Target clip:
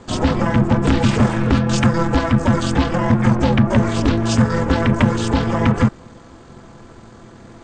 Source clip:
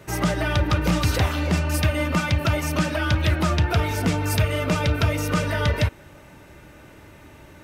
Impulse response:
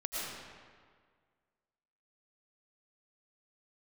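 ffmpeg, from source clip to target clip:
-af "asetrate=24750,aresample=44100,atempo=1.7818,aeval=exprs='val(0)*sin(2*PI*170*n/s)':channel_layout=same,volume=9dB"

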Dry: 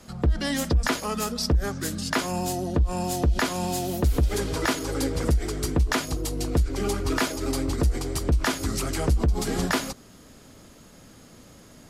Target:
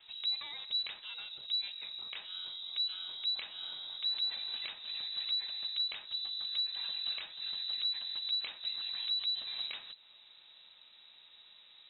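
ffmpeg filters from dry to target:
ffmpeg -i in.wav -filter_complex "[0:a]acrossover=split=150|1300[link_01][link_02][link_03];[link_01]acompressor=threshold=-23dB:ratio=4[link_04];[link_02]acompressor=threshold=-40dB:ratio=4[link_05];[link_03]acompressor=threshold=-38dB:ratio=4[link_06];[link_04][link_05][link_06]amix=inputs=3:normalize=0,lowpass=frequency=3400:width_type=q:width=0.5098,lowpass=frequency=3400:width_type=q:width=0.6013,lowpass=frequency=3400:width_type=q:width=0.9,lowpass=frequency=3400:width_type=q:width=2.563,afreqshift=-4000,volume=-8.5dB" out.wav

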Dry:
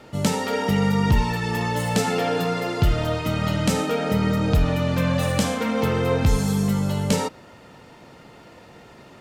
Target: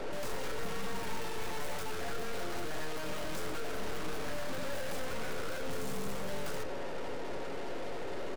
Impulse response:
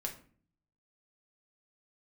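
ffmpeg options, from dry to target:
-filter_complex "[0:a]highpass=300,equalizer=frequency=450:width=0.77:gain=12.5,acompressor=threshold=-16dB:ratio=16,atempo=1.1,aeval=exprs='0.0944*(abs(mod(val(0)/0.0944+3,4)-2)-1)':channel_layout=same,aeval=exprs='(tanh(251*val(0)+0.35)-tanh(0.35))/251':channel_layout=same,asplit=2[link_01][link_02];[1:a]atrim=start_sample=2205,lowshelf=frequency=140:gain=11.5[link_03];[link_02][link_03]afir=irnorm=-1:irlink=0,volume=-3.5dB[link_04];[link_01][link_04]amix=inputs=2:normalize=0,volume=4.5dB"

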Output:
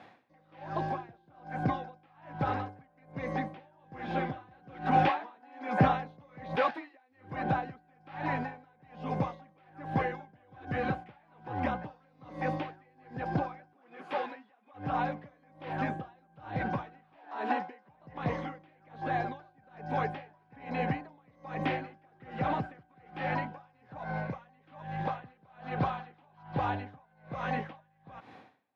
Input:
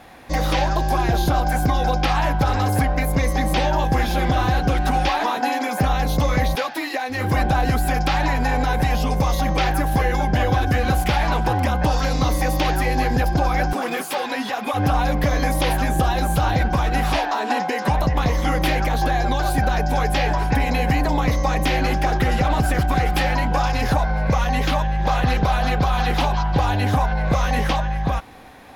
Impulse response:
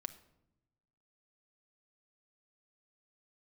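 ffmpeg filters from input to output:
-filter_complex "[0:a]highpass=frequency=110:width=0.5412,highpass=frequency=110:width=1.3066,acrossover=split=2900[link_01][link_02];[link_02]acompressor=threshold=-47dB:ratio=4:attack=1:release=60[link_03];[link_01][link_03]amix=inputs=2:normalize=0,lowpass=3700,asettb=1/sr,asplit=3[link_04][link_05][link_06];[link_04]atrim=end=4.514[link_07];[link_05]atrim=start=4.51:end=6.71,asetpts=PTS-STARTPTS,afade=type=in:duration=0.004:curve=qsin,afade=type=out:start_time=2.196:duration=0.004:curve=qsin,acontrast=66[link_08];[link_06]atrim=start=6.706[link_09];[link_07][link_08]acrossfade=duration=0.004:curve1=hsin:curve2=qsin[link_10];[link_10][link_09]acrossfade=duration=0.004:curve1=qsin:curve2=hsin,aeval=exprs='val(0)*pow(10,-34*(0.5-0.5*cos(2*PI*1.2*n/s))/20)':channel_layout=same,volume=-7.5dB"

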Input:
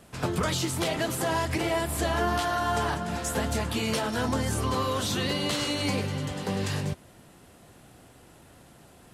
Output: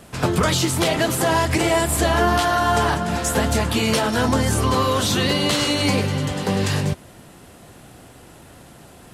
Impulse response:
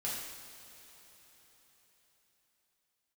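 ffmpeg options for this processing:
-filter_complex "[0:a]asettb=1/sr,asplit=3[link_01][link_02][link_03];[link_01]atrim=end=1.544[link_04];[link_02]atrim=start=1.54:end=1.96,asetpts=PTS-STARTPTS,afade=type=in:duration=0.004:curve=qsin,afade=type=out:start_time=0.416:duration=0.004:curve=qsin,equalizer=frequency=7700:width=2.2:gain=7[link_05];[link_03]atrim=start=1.956[link_06];[link_04][link_05]acrossfade=duration=0.004:curve1=hsin:curve2=qsin[link_07];[link_07][link_06]acrossfade=duration=0.004:curve1=qsin:curve2=hsin,volume=8.5dB"

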